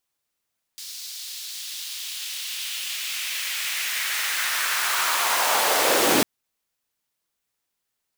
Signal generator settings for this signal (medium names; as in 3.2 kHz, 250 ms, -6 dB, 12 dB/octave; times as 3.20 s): swept filtered noise pink, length 5.45 s highpass, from 4.5 kHz, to 230 Hz, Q 1.8, linear, gain ramp +16 dB